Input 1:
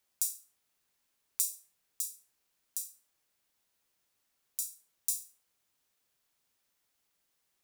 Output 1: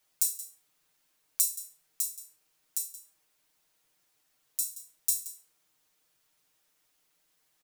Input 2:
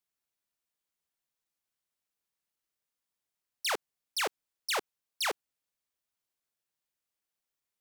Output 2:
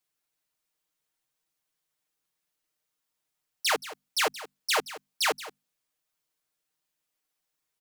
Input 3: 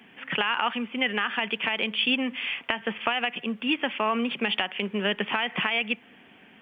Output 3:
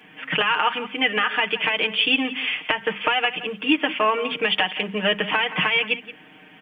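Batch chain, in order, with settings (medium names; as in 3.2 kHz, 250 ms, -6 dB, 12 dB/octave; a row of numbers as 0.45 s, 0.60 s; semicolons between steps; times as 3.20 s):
hum notches 50/100/150/200/250 Hz; comb 6.5 ms, depth 97%; delay 175 ms -15.5 dB; trim +2.5 dB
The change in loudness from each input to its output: +4.5 LU, +5.5 LU, +5.0 LU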